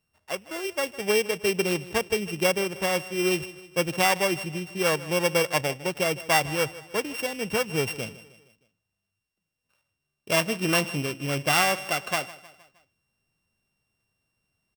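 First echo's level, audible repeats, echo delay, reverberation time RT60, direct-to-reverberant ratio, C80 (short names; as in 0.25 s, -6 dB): -18.0 dB, 3, 0.156 s, none, none, none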